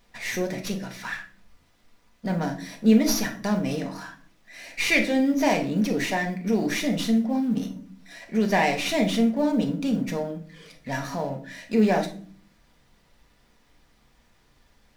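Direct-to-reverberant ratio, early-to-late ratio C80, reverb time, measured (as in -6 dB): 2.0 dB, 16.5 dB, not exponential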